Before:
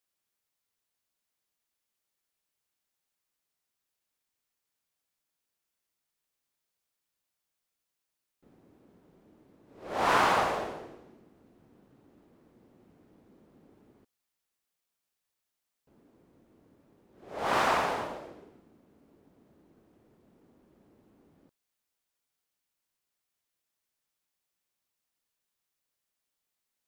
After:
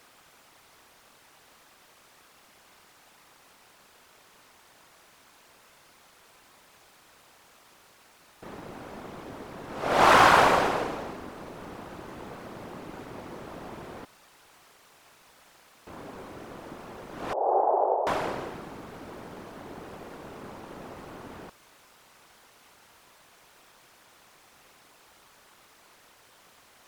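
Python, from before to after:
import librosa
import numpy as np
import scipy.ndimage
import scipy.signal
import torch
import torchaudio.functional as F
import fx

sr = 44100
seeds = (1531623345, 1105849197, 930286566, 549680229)

y = fx.bin_compress(x, sr, power=0.6)
y = fx.whisperise(y, sr, seeds[0])
y = fx.ellip_bandpass(y, sr, low_hz=380.0, high_hz=840.0, order=3, stop_db=70, at=(17.33, 18.07))
y = y * 10.0 ** (5.5 / 20.0)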